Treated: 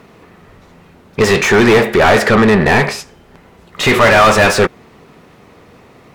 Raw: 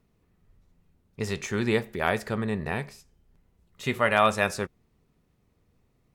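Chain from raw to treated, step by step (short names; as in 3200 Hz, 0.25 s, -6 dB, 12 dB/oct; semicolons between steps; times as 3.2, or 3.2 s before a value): overdrive pedal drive 34 dB, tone 1800 Hz, clips at -8.5 dBFS; gain +8 dB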